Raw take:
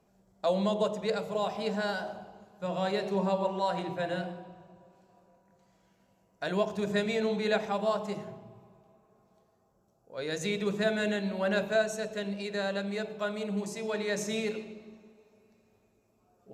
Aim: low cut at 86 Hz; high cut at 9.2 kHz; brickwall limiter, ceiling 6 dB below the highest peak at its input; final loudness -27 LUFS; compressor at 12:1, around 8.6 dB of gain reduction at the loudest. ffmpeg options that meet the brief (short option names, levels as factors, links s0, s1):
-af "highpass=86,lowpass=9200,acompressor=threshold=0.0282:ratio=12,volume=3.35,alimiter=limit=0.141:level=0:latency=1"